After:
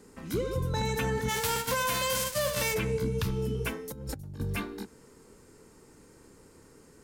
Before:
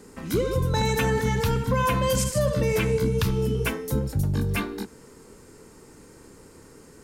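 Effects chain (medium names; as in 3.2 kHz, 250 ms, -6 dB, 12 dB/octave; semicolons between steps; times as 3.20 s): 1.28–2.73 s: formants flattened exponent 0.3; 3.92–4.40 s: compressor with a negative ratio -34 dBFS, ratio -1; trim -6.5 dB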